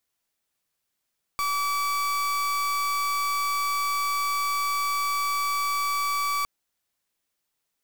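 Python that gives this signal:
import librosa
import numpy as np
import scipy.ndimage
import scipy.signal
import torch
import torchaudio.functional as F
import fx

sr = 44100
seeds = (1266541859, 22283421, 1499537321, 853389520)

y = fx.pulse(sr, length_s=5.06, hz=1150.0, level_db=-26.0, duty_pct=37)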